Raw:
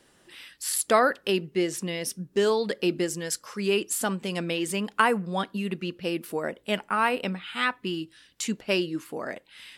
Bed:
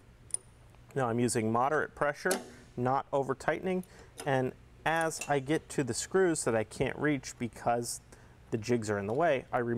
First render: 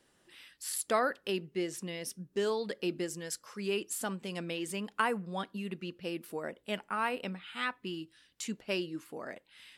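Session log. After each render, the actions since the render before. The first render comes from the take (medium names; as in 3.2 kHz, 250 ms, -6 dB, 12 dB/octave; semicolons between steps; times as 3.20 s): trim -8.5 dB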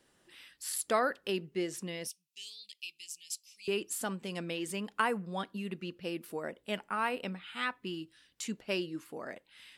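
2.07–3.68 s: elliptic high-pass 2.5 kHz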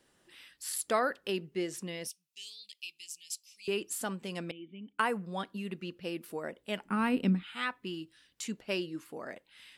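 4.51–4.99 s: cascade formant filter i; 6.85–7.43 s: resonant low shelf 400 Hz +11.5 dB, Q 1.5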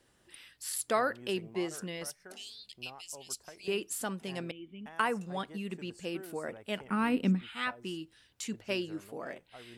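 add bed -21 dB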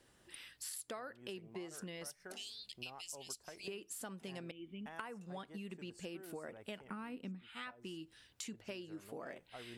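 compression 10:1, threshold -43 dBFS, peak gain reduction 19.5 dB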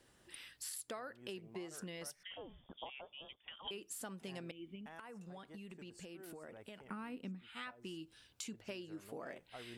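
2.23–3.71 s: frequency inversion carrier 3.5 kHz; 4.75–6.83 s: compression, threshold -47 dBFS; 8.00–8.53 s: band-stop 1.9 kHz, Q 7.2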